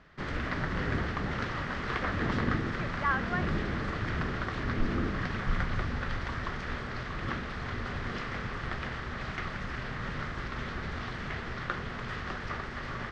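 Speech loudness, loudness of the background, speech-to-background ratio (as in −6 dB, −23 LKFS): −36.5 LKFS, −34.5 LKFS, −2.0 dB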